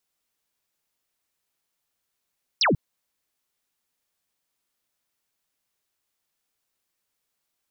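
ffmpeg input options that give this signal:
-f lavfi -i "aevalsrc='0.141*clip(t/0.002,0,1)*clip((0.14-t)/0.002,0,1)*sin(2*PI*6000*0.14/log(110/6000)*(exp(log(110/6000)*t/0.14)-1))':d=0.14:s=44100"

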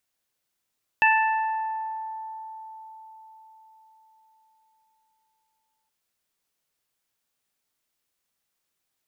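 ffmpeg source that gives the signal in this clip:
-f lavfi -i "aevalsrc='0.119*pow(10,-3*t/4.92)*sin(2*PI*881*t)+0.126*pow(10,-3*t/1.58)*sin(2*PI*1762*t)+0.119*pow(10,-3*t/0.99)*sin(2*PI*2643*t)':d=4.87:s=44100"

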